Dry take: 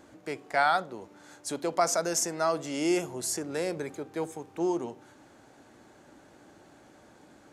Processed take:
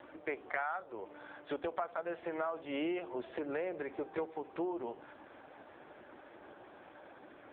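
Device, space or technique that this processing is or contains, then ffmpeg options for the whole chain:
voicemail: -af "highpass=380,lowpass=3300,acompressor=threshold=-40dB:ratio=8,volume=7dB" -ar 8000 -c:a libopencore_amrnb -b:a 5150

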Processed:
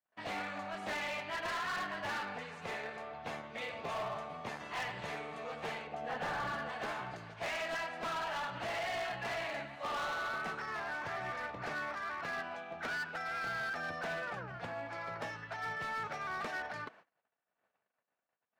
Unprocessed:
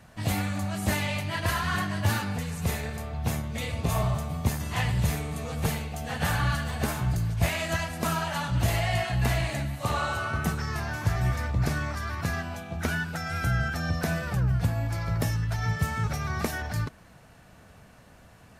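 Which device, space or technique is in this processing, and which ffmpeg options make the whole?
walkie-talkie: -filter_complex "[0:a]highpass=470,lowpass=2700,asoftclip=type=hard:threshold=-32dB,agate=range=-37dB:threshold=-54dB:ratio=16:detection=peak,asettb=1/sr,asplit=3[link_01][link_02][link_03];[link_01]atrim=end=5.874[link_04];[link_02]atrim=start=5.87:end=6.7,asetpts=PTS-STARTPTS,afade=type=in:duration=0.004:curve=qsin,afade=type=out:start_time=0.826:duration=0.004:curve=qsin,tiltshelf=frequency=1200:gain=5[link_05];[link_03]atrim=start=6.696[link_06];[link_04][link_05]acrossfade=duration=0.004:curve1=hsin:curve2=qsin[link_07];[link_07][link_06]acrossfade=duration=0.004:curve1=qsin:curve2=hsin,volume=-2.5dB"

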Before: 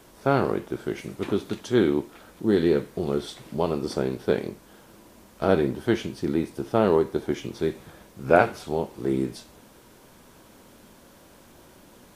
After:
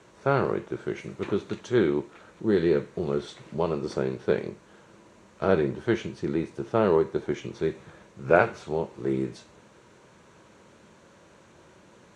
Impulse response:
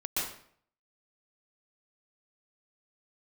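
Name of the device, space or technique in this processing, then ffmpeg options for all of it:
car door speaker: -af "highpass=86,equalizer=frequency=260:width_type=q:width=4:gain=-9,equalizer=frequency=740:width_type=q:width=4:gain=-5,equalizer=frequency=3300:width_type=q:width=4:gain=-5,equalizer=frequency=5000:width_type=q:width=4:gain=-9,lowpass=frequency=7000:width=0.5412,lowpass=frequency=7000:width=1.3066"

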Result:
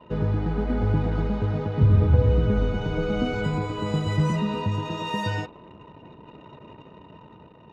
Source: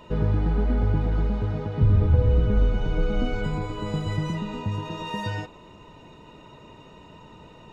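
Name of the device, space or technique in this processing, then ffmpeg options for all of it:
voice memo with heavy noise removal: -filter_complex "[0:a]highpass=73,asettb=1/sr,asplit=3[link_01][link_02][link_03];[link_01]atrim=end=4.184[link_04];[link_02]atrim=start=4.18:end=4.67,asetpts=PTS-STARTPTS,afade=type=in:duration=0.004:curve=qsin,afade=type=out:start_time=0.486:duration=0.004:curve=qsin,asplit=2[link_05][link_06];[link_06]adelay=14,volume=-2.5dB[link_07];[link_05][link_07]amix=inputs=2:normalize=0,atrim=end_sample=21609[link_08];[link_03]atrim=start=4.666[link_09];[link_04][link_08]acrossfade=duration=0.004:curve1=hsin:curve2=qsin[link_10];[link_10][link_09]acrossfade=duration=0.004:curve1=qsin:curve2=hsin,anlmdn=0.0158,dynaudnorm=framelen=110:gausssize=13:maxgain=3dB"

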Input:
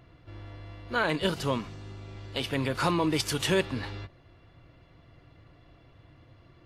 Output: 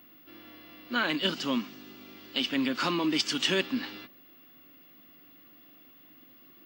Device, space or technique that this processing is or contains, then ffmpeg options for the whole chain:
old television with a line whistle: -af "highpass=frequency=210:width=0.5412,highpass=frequency=210:width=1.3066,equalizer=frequency=250:width_type=q:width=4:gain=8,equalizer=frequency=450:width_type=q:width=4:gain=-10,equalizer=frequency=650:width_type=q:width=4:gain=-5,equalizer=frequency=920:width_type=q:width=4:gain=-6,equalizer=frequency=3000:width_type=q:width=4:gain=6,equalizer=frequency=5000:width_type=q:width=4:gain=4,lowpass=frequency=7300:width=0.5412,lowpass=frequency=7300:width=1.3066,aeval=exprs='val(0)+0.002*sin(2*PI*15625*n/s)':channel_layout=same"

